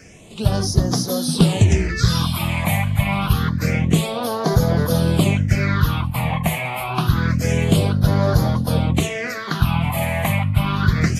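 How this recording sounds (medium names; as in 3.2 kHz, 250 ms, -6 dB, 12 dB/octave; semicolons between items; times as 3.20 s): phasing stages 6, 0.27 Hz, lowest notch 370–2500 Hz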